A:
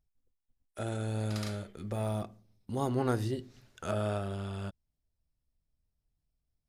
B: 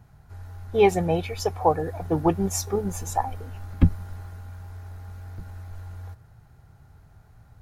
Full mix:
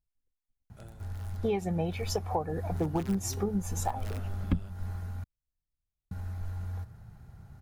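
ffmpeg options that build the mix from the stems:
-filter_complex "[0:a]alimiter=limit=0.0668:level=0:latency=1:release=224,aeval=exprs='(mod(18.8*val(0)+1,2)-1)/18.8':c=same,volume=0.944,afade=t=out:st=0.61:d=0.33:silence=0.251189,afade=t=in:st=2.77:d=0.23:silence=0.334965[s0];[1:a]equalizer=f=200:w=3.2:g=8.5,acompressor=threshold=0.0501:ratio=8,adelay=700,volume=0.841,asplit=3[s1][s2][s3];[s1]atrim=end=5.24,asetpts=PTS-STARTPTS,afade=t=out:st=5.236:d=0.004:c=hsin[s4];[s2]atrim=start=5.24:end=6.11,asetpts=PTS-STARTPTS,volume=0[s5];[s3]atrim=start=6.11,asetpts=PTS-STARTPTS,afade=t=in:d=0.004:c=hsin[s6];[s4][s5][s6]concat=n=3:v=0:a=1[s7];[s0][s7]amix=inputs=2:normalize=0,lowshelf=f=120:g=5"

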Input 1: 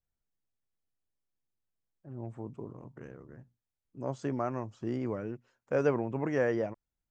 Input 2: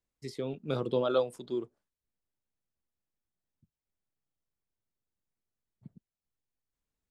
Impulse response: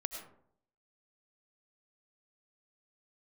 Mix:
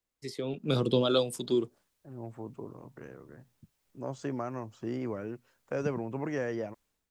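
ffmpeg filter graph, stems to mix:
-filter_complex "[0:a]volume=0.251[s0];[1:a]volume=1.26[s1];[s0][s1]amix=inputs=2:normalize=0,dynaudnorm=f=420:g=3:m=5.31,lowshelf=f=230:g=-6.5,acrossover=split=280|3000[s2][s3][s4];[s3]acompressor=threshold=0.0158:ratio=2.5[s5];[s2][s5][s4]amix=inputs=3:normalize=0"

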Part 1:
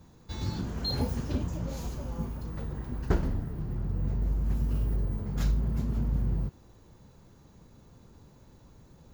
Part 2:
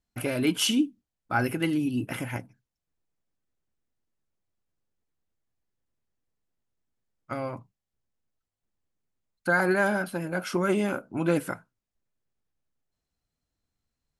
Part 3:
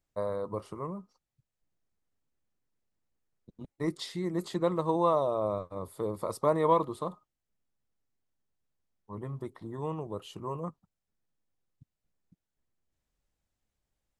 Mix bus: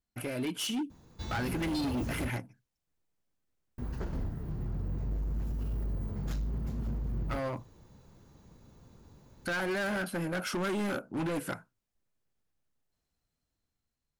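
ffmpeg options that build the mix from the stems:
-filter_complex "[0:a]alimiter=limit=0.075:level=0:latency=1:release=172,adelay=900,volume=0.794,asplit=3[s0][s1][s2];[s0]atrim=end=2.3,asetpts=PTS-STARTPTS,afade=t=out:st=2.296:d=0.004:c=hsin[s3];[s1]atrim=start=2.3:end=3.78,asetpts=PTS-STARTPTS,volume=0[s4];[s2]atrim=start=3.78,asetpts=PTS-STARTPTS,afade=t=in:d=0.004:c=hsin[s5];[s3][s4][s5]concat=n=3:v=0:a=1[s6];[1:a]alimiter=limit=0.119:level=0:latency=1:release=243,dynaudnorm=f=300:g=7:m=2,volume=0.562[s7];[s6][s7]amix=inputs=2:normalize=0,asoftclip=type=hard:threshold=0.0335"

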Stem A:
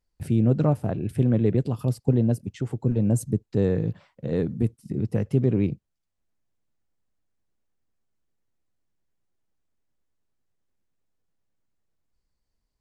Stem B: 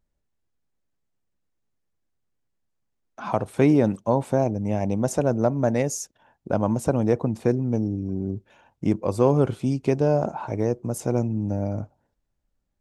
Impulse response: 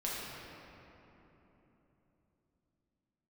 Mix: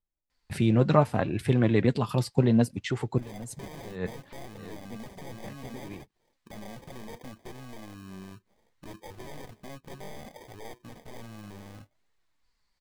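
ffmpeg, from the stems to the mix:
-filter_complex "[0:a]equalizer=f=1000:t=o:w=1:g=9,equalizer=f=2000:t=o:w=1:g=10,equalizer=f=4000:t=o:w=1:g=10,equalizer=f=8000:t=o:w=1:g=4,adelay=300,volume=1.41[s0];[1:a]acrusher=samples=32:mix=1:aa=0.000001,aeval=exprs='0.0794*(abs(mod(val(0)/0.0794+3,4)-2)-1)':c=same,volume=0.282,asplit=2[s1][s2];[s2]apad=whole_len=577943[s3];[s0][s3]sidechaincompress=threshold=0.00126:ratio=10:attack=7.3:release=101[s4];[s4][s1]amix=inputs=2:normalize=0,flanger=delay=2.2:depth=3.8:regen=60:speed=0.66:shape=triangular"

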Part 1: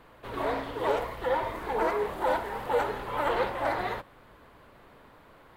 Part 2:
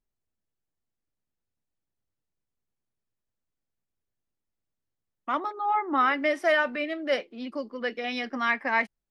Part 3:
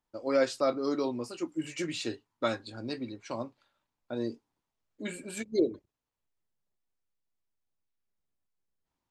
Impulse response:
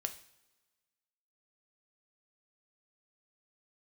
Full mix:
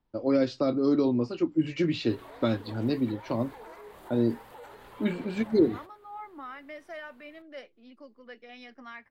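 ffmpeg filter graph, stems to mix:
-filter_complex "[0:a]highshelf=f=3700:g=10,alimiter=level_in=1.12:limit=0.0631:level=0:latency=1:release=121,volume=0.891,adelay=1850,volume=0.211[s0];[1:a]alimiter=limit=0.15:level=0:latency=1:release=241,adelay=450,volume=0.158[s1];[2:a]lowpass=f=4700:w=0.5412,lowpass=f=4700:w=1.3066,lowshelf=f=480:g=11.5,acrossover=split=330|3000[s2][s3][s4];[s3]acompressor=threshold=0.0355:ratio=6[s5];[s2][s5][s4]amix=inputs=3:normalize=0,volume=1.19[s6];[s0][s1][s6]amix=inputs=3:normalize=0"

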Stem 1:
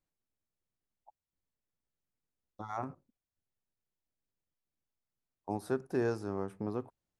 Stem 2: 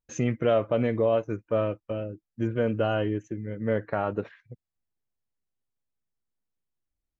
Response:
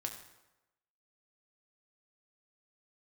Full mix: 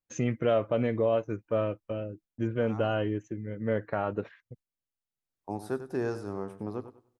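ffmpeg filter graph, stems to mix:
-filter_complex "[0:a]volume=0.944,afade=t=in:st=5.15:d=0.28:silence=0.421697,asplit=3[s0][s1][s2];[s1]volume=0.141[s3];[s2]volume=0.266[s4];[1:a]agate=range=0.0224:threshold=0.00355:ratio=16:detection=peak,volume=0.75[s5];[2:a]atrim=start_sample=2205[s6];[s3][s6]afir=irnorm=-1:irlink=0[s7];[s4]aecho=0:1:97|194|291|388:1|0.24|0.0576|0.0138[s8];[s0][s5][s7][s8]amix=inputs=4:normalize=0"

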